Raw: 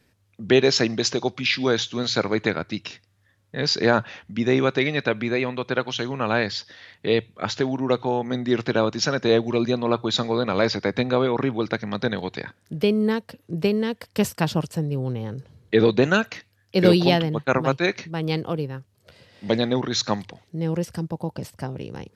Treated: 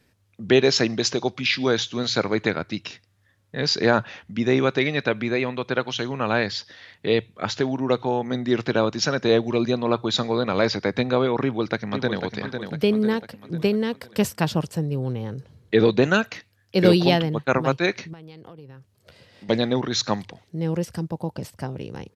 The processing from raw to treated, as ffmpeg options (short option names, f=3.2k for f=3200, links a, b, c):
-filter_complex "[0:a]asplit=2[a][b];[b]afade=t=in:st=11.41:d=0.01,afade=t=out:st=12.24:d=0.01,aecho=0:1:500|1000|1500|2000|2500|3000:0.446684|0.223342|0.111671|0.0558354|0.0279177|0.0139589[c];[a][c]amix=inputs=2:normalize=0,asettb=1/sr,asplit=3[d][e][f];[d]atrim=end=18.134[g];[e]atrim=start=18.13:end=19.49,asetpts=PTS-STARTPTS,afade=t=in:d=0.004:c=qsin,afade=t=out:st=1.356:d=0.004:c=qsin,acompressor=threshold=-38dB:ratio=16:attack=3.2:release=140:knee=1:detection=peak[h];[f]atrim=start=19.486[i];[g][h]acrossfade=d=0.004:c1=hsin:c2=qsin[j];[j][i]acrossfade=d=0.004:c1=qsin:c2=hsin"